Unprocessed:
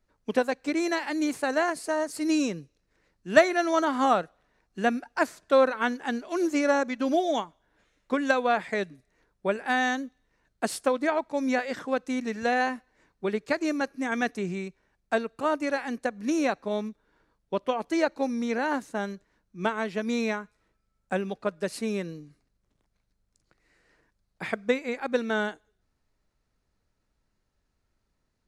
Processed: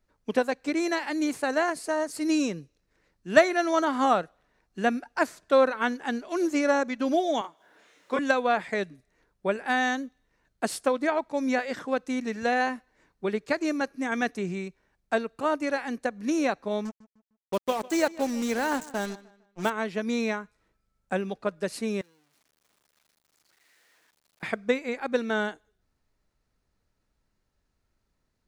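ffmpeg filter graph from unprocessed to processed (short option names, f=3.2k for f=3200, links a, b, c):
-filter_complex "[0:a]asettb=1/sr,asplit=3[a][b][c];[a]atrim=end=7.414[d];[b]atrim=start=7.41:end=8.19,asetpts=PTS-STARTPTS,afade=t=in:d=0.004:c=qsin,afade=t=out:st=0.776:d=0.004:c=qsin,highpass=330,acompressor=mode=upward:threshold=-50dB:ratio=2.5:attack=3.2:release=140:knee=2.83:detection=peak,asplit=2[e][f];[f]adelay=31,volume=-2.5dB[g];[e][g]amix=inputs=2:normalize=0,atrim=end_sample=34398[h];[c]atrim=start=8.186[i];[d][h]acrossfade=d=0.004:c1=hsin:c2=qsin[j];[j][i]acrossfade=d=0.004:c1=qsin:c2=hsin,asettb=1/sr,asplit=3[k][l][m];[k]atrim=end=16.854[n];[l]atrim=start=16.85:end=19.7,asetpts=PTS-STARTPTS,afade=t=in:d=0.004:c=qsin,afade=t=out:st=2.846:d=0.004:c=qsin,lowpass=f=7.7k:t=q:w=4.7,acrusher=bits=5:mix=0:aa=0.5,asplit=2[o][p];[p]adelay=152,lowpass=f=4.9k:p=1,volume=-19.5dB,asplit=2[q][r];[r]adelay=152,lowpass=f=4.9k:p=1,volume=0.35,asplit=2[s][t];[t]adelay=152,lowpass=f=4.9k:p=1,volume=0.35[u];[o][q][s][u]amix=inputs=4:normalize=0,atrim=end_sample=125685[v];[m]atrim=start=19.696[w];[n][v]acrossfade=d=0.004:c1=hsin:c2=qsin[x];[x][w]acrossfade=d=0.004:c1=qsin:c2=hsin,asettb=1/sr,asplit=3[y][z][aa];[y]atrim=end=22.014[ab];[z]atrim=start=22.01:end=24.43,asetpts=PTS-STARTPTS,afade=t=in:d=0.004:c=qsin,afade=t=out:st=2.416:d=0.004:c=qsin,aeval=exprs='val(0)+0.5*0.00944*sgn(val(0))':c=same,lowpass=f=1.1k:p=1,aderivative[ac];[aa]atrim=start=24.426[ad];[ab][ac]acrossfade=d=0.004:c1=hsin:c2=qsin[ae];[ae][ad]acrossfade=d=0.004:c1=qsin:c2=hsin"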